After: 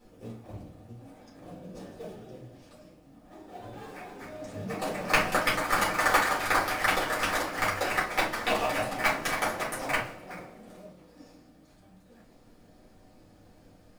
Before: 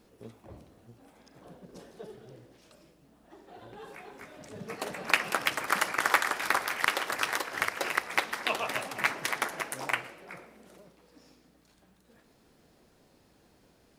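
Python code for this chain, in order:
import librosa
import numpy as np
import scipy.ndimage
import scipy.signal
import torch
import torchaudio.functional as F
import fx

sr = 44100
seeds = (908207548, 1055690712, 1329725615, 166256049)

p1 = fx.sample_hold(x, sr, seeds[0], rate_hz=3100.0, jitter_pct=20)
p2 = x + (p1 * librosa.db_to_amplitude(-6.5))
p3 = fx.room_shoebox(p2, sr, seeds[1], volume_m3=140.0, walls='furnished', distance_m=4.2)
y = p3 * librosa.db_to_amplitude(-7.5)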